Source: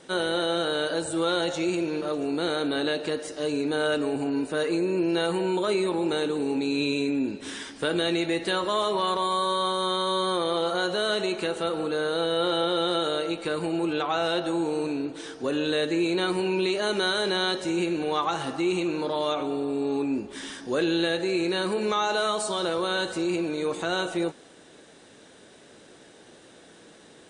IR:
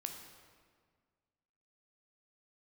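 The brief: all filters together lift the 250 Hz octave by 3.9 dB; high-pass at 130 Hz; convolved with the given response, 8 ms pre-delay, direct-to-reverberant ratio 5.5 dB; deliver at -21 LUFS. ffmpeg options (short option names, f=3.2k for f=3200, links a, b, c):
-filter_complex "[0:a]highpass=130,equalizer=f=250:t=o:g=6,asplit=2[a][b];[1:a]atrim=start_sample=2205,adelay=8[c];[b][c]afir=irnorm=-1:irlink=0,volume=-4dB[d];[a][d]amix=inputs=2:normalize=0,volume=2.5dB"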